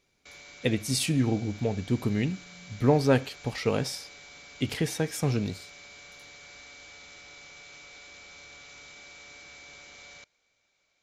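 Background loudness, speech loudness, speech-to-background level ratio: -47.0 LUFS, -28.0 LUFS, 19.0 dB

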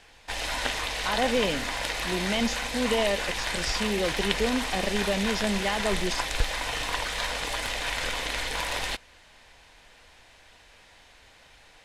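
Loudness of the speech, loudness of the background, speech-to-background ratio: -29.5 LUFS, -29.5 LUFS, 0.0 dB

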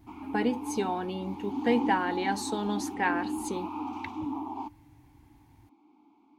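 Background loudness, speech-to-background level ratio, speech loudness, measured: -36.0 LUFS, 5.0 dB, -31.0 LUFS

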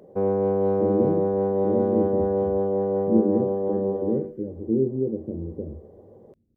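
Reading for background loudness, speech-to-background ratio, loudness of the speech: -24.0 LUFS, -4.0 dB, -28.0 LUFS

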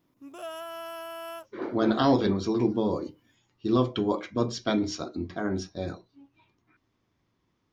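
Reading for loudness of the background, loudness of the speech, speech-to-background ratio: -39.5 LUFS, -28.0 LUFS, 11.5 dB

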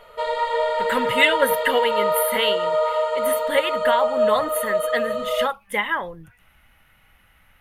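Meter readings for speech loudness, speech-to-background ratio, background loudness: -23.5 LUFS, -1.0 dB, -22.5 LUFS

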